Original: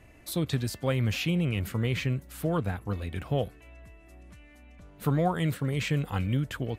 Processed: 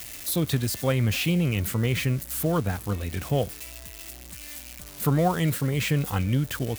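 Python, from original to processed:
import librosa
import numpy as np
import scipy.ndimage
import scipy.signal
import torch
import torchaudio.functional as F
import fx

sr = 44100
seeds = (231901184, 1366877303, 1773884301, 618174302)

y = x + 0.5 * 10.0 ** (-30.5 / 20.0) * np.diff(np.sign(x), prepend=np.sign(x[:1]))
y = y * 10.0 ** (3.5 / 20.0)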